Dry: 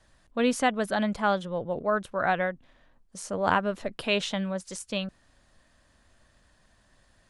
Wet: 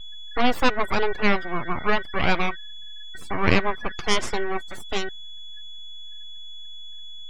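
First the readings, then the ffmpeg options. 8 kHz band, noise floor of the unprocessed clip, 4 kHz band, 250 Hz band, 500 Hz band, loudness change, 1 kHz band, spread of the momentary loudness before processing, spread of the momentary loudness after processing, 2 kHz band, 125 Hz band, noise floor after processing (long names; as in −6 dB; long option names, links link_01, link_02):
+1.0 dB, −64 dBFS, +6.0 dB, +2.0 dB, +1.5 dB, +3.5 dB, +2.5 dB, 10 LU, 18 LU, +5.5 dB, +5.5 dB, −35 dBFS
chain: -af "aeval=exprs='val(0)+0.0112*sin(2*PI*1700*n/s)':channel_layout=same,aeval=exprs='abs(val(0))':channel_layout=same,afftdn=noise_reduction=25:noise_floor=-42,volume=7dB"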